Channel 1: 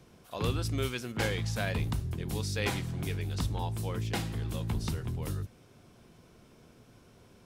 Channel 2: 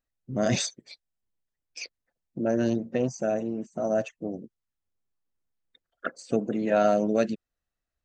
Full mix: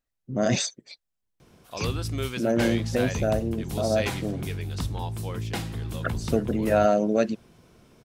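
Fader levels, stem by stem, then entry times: +2.0, +1.5 dB; 1.40, 0.00 s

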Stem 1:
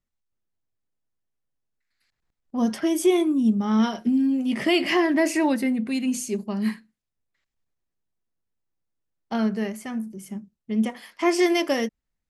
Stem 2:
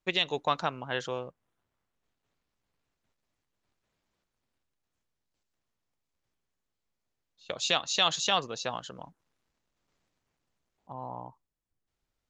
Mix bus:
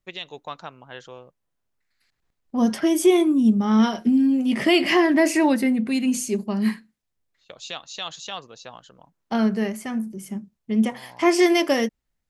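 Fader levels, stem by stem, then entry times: +3.0, -7.0 dB; 0.00, 0.00 s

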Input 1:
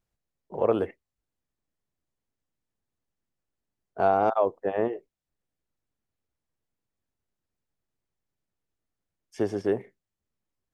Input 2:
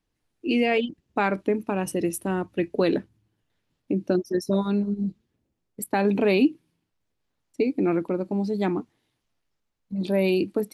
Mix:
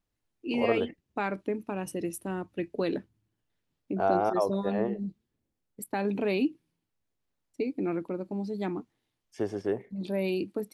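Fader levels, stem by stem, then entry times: -4.0, -7.5 dB; 0.00, 0.00 s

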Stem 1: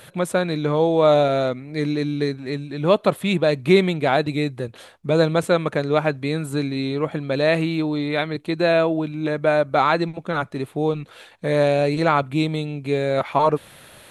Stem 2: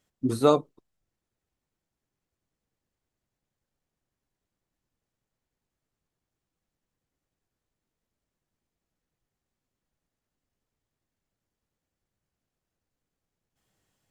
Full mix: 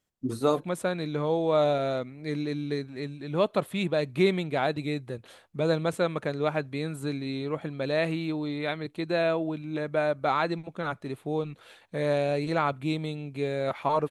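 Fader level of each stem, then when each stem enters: -8.0, -4.5 dB; 0.50, 0.00 s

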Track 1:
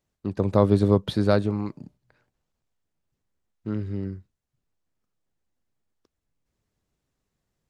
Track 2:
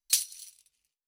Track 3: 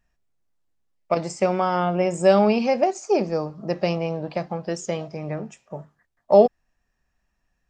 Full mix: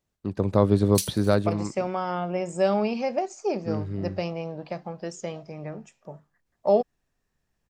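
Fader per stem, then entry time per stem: -1.0, -4.0, -6.5 dB; 0.00, 0.85, 0.35 s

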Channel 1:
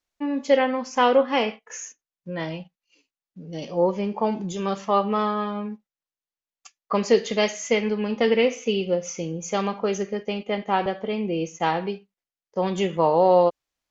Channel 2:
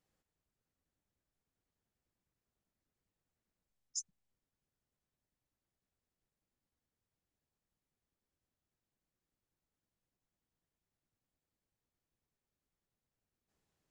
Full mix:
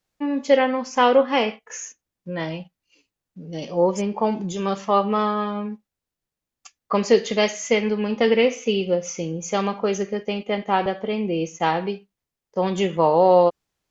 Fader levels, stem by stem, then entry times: +2.0, +2.0 dB; 0.00, 0.00 s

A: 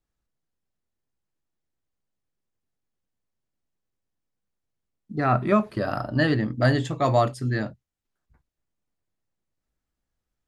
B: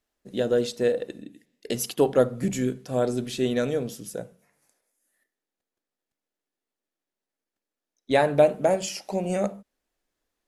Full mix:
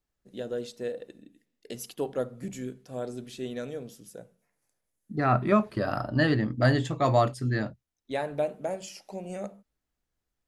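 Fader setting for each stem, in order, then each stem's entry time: -2.0, -10.5 dB; 0.00, 0.00 s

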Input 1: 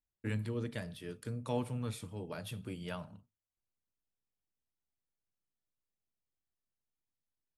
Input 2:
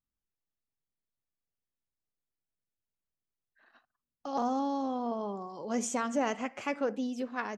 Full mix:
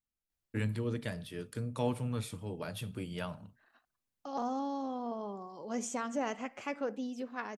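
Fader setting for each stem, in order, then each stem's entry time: +2.5, -4.5 dB; 0.30, 0.00 s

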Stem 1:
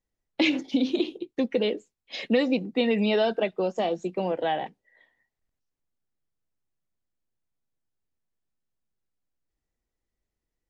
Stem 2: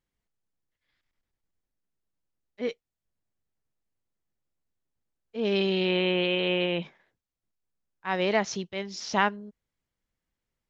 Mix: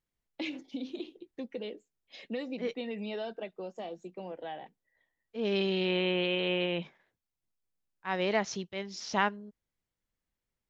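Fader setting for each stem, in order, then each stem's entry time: -14.0, -4.0 dB; 0.00, 0.00 s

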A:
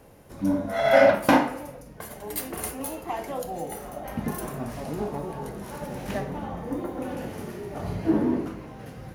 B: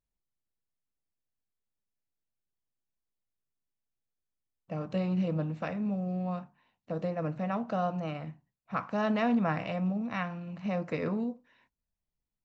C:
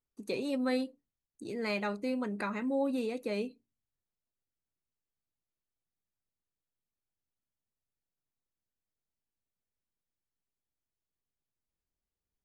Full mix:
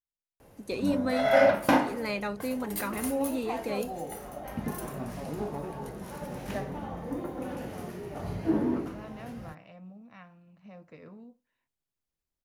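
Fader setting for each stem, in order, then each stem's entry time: -4.0, -17.0, +1.0 dB; 0.40, 0.00, 0.40 s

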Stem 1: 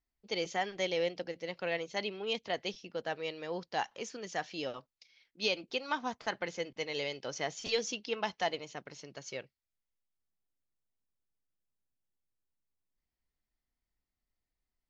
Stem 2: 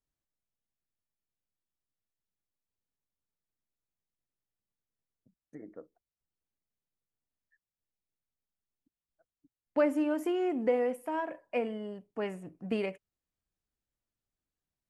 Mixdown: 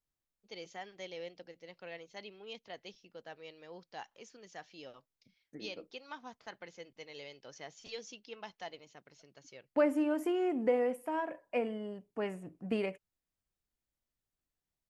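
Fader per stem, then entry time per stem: -12.0, -1.5 dB; 0.20, 0.00 s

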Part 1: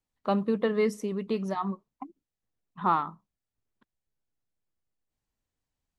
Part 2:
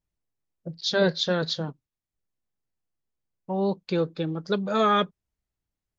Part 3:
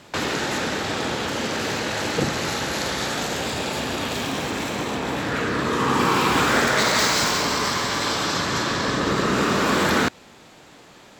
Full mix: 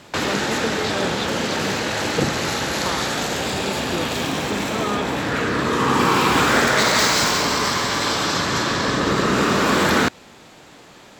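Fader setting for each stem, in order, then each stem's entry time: -4.0, -5.5, +2.5 dB; 0.00, 0.00, 0.00 s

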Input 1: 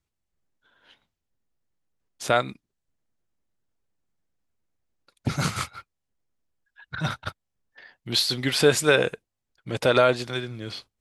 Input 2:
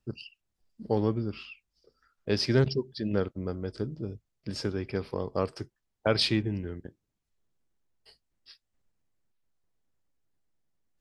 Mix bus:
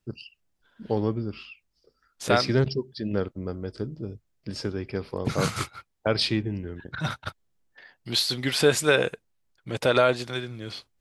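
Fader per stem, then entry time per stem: -1.5, +1.0 dB; 0.00, 0.00 s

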